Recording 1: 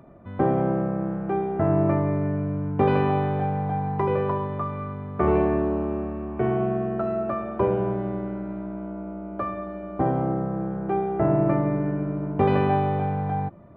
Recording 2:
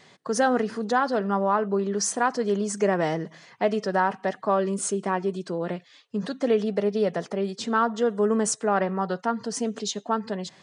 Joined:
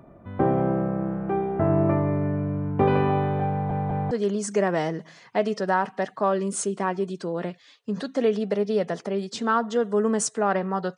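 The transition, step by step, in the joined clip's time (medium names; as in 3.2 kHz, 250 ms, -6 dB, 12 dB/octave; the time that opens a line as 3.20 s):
recording 1
3.51 s: stutter in place 0.20 s, 3 plays
4.11 s: go over to recording 2 from 2.37 s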